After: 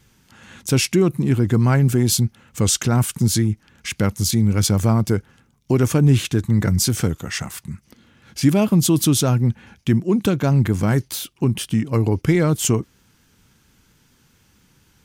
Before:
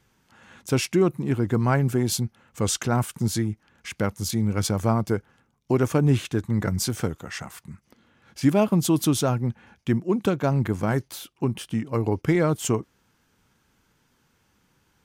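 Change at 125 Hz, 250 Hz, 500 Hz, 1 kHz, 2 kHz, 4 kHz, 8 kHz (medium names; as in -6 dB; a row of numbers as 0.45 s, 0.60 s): +7.0 dB, +5.0 dB, +2.0 dB, +0.5 dB, +4.0 dB, +7.5 dB, +8.0 dB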